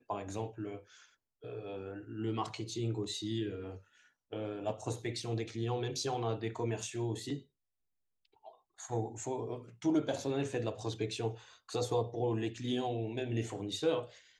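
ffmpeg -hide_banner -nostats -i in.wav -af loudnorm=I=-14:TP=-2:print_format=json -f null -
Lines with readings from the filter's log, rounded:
"input_i" : "-36.8",
"input_tp" : "-19.8",
"input_lra" : "3.9",
"input_thresh" : "-47.3",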